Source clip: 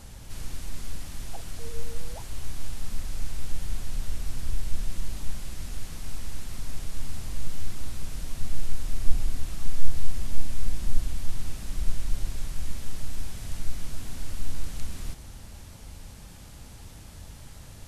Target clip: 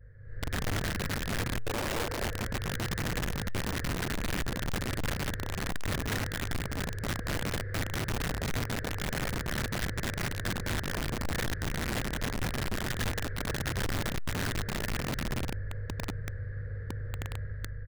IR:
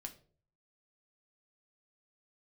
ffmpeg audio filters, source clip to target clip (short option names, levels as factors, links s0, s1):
-filter_complex "[0:a]afftfilt=real='re':imag='-im':win_size=4096:overlap=0.75,acrossover=split=110[s0][s1];[s0]acompressor=threshold=0.0316:ratio=20[s2];[s2][s1]amix=inputs=2:normalize=0,aeval=exprs='val(0)+0.00631*(sin(2*PI*50*n/s)+sin(2*PI*2*50*n/s)/2+sin(2*PI*3*50*n/s)/3+sin(2*PI*4*50*n/s)/4+sin(2*PI*5*50*n/s)/5)':c=same,adynamicequalizer=threshold=0.00126:dfrequency=120:dqfactor=2.3:tfrequency=120:tqfactor=2.3:attack=5:release=100:ratio=0.375:range=2.5:mode=boostabove:tftype=bell,dynaudnorm=f=140:g=7:m=5.01,firequalizer=gain_entry='entry(130,0);entry(200,-20);entry(480,10);entry(810,-23);entry(1700,11);entry(2700,-30)':delay=0.05:min_phase=1,aecho=1:1:170|272|333.2|369.9|392:0.631|0.398|0.251|0.158|0.1,aresample=11025,aeval=exprs='clip(val(0),-1,0.126)':c=same,aresample=44100,bandreject=f=111.5:t=h:w=4,bandreject=f=223:t=h:w=4,bandreject=f=334.5:t=h:w=4,bandreject=f=446:t=h:w=4,bandreject=f=557.5:t=h:w=4,bandreject=f=669:t=h:w=4,bandreject=f=780.5:t=h:w=4,bandreject=f=892:t=h:w=4,bandreject=f=1003.5:t=h:w=4,bandreject=f=1115:t=h:w=4,bandreject=f=1226.5:t=h:w=4,bandreject=f=1338:t=h:w=4,bandreject=f=1449.5:t=h:w=4,bandreject=f=1561:t=h:w=4,bandreject=f=1672.5:t=h:w=4,bandreject=f=1784:t=h:w=4,bandreject=f=1895.5:t=h:w=4,bandreject=f=2007:t=h:w=4,bandreject=f=2118.5:t=h:w=4,bandreject=f=2230:t=h:w=4,bandreject=f=2341.5:t=h:w=4,bandreject=f=2453:t=h:w=4,bandreject=f=2564.5:t=h:w=4,bandreject=f=2676:t=h:w=4,bandreject=f=2787.5:t=h:w=4,aeval=exprs='(mod(9.44*val(0)+1,2)-1)/9.44':c=same,volume=0.376"